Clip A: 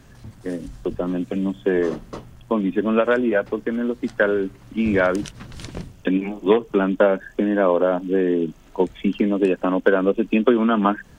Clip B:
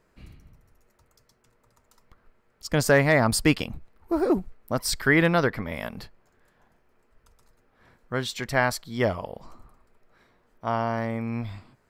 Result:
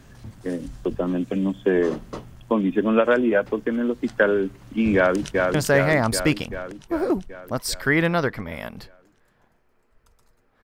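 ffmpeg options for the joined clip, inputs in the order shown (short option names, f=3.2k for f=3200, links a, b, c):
-filter_complex "[0:a]apad=whole_dur=10.63,atrim=end=10.63,atrim=end=5.542[a];[1:a]atrim=start=2.738:end=7.83[b];[a][b]acrossfade=d=0.004:c1=hsin:c2=hsin,asplit=2[c][d];[d]afade=t=in:st=4.95:d=0.01,afade=t=out:st=5.54:d=0.01,aecho=0:1:390|780|1170|1560|1950|2340|2730|3120|3510|3900:0.707946|0.460165|0.299107|0.19442|0.126373|0.0821423|0.0533925|0.0347051|0.0225583|0.0146629[e];[c][e]amix=inputs=2:normalize=0"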